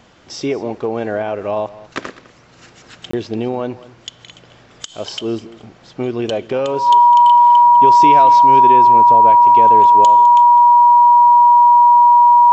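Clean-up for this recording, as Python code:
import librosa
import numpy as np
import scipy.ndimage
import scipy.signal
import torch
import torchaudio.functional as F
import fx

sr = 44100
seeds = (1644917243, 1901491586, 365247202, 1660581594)

y = fx.notch(x, sr, hz=960.0, q=30.0)
y = fx.fix_interpolate(y, sr, at_s=(3.11,), length_ms=24.0)
y = fx.fix_echo_inverse(y, sr, delay_ms=205, level_db=-18.5)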